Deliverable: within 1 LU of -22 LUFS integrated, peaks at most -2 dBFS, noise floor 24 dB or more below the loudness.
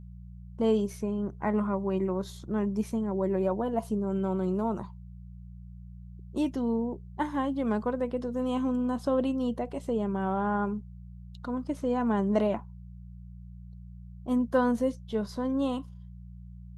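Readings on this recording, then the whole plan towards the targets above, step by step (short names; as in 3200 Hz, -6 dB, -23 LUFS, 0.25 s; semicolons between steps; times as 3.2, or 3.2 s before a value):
hum 60 Hz; harmonics up to 180 Hz; hum level -42 dBFS; loudness -30.0 LUFS; peak -14.0 dBFS; loudness target -22.0 LUFS
-> de-hum 60 Hz, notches 3; gain +8 dB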